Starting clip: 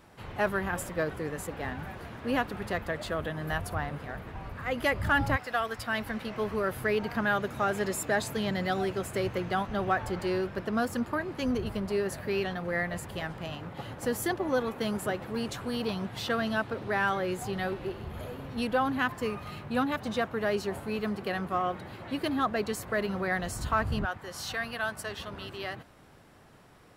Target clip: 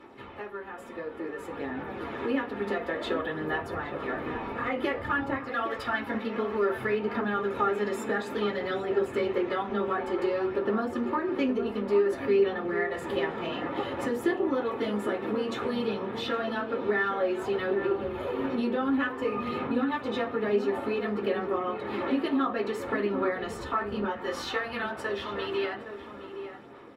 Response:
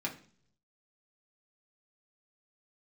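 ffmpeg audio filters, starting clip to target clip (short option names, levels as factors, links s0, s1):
-filter_complex "[0:a]aphaser=in_gain=1:out_gain=1:delay=4.5:decay=0.38:speed=0.56:type=sinusoidal,acompressor=threshold=0.00794:ratio=5,bass=f=250:g=-9,treble=f=4000:g=-13,dynaudnorm=f=710:g=5:m=3.16,asplit=2[s0][s1];[s1]adelay=816.3,volume=0.355,highshelf=f=4000:g=-18.4[s2];[s0][s2]amix=inputs=2:normalize=0[s3];[1:a]atrim=start_sample=2205,asetrate=66150,aresample=44100[s4];[s3][s4]afir=irnorm=-1:irlink=0,volume=1.78"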